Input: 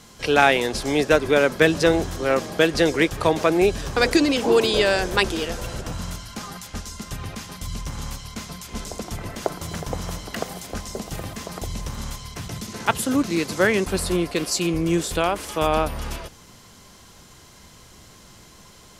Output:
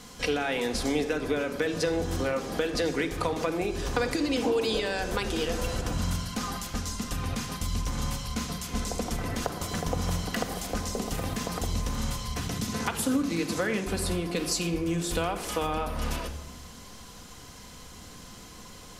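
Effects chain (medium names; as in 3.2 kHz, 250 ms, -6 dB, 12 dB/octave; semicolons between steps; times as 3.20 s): peak limiter -9 dBFS, peak gain reduction 7.5 dB; compression 5:1, threshold -27 dBFS, peak gain reduction 12 dB; reverberation RT60 0.95 s, pre-delay 4 ms, DRR 4.5 dB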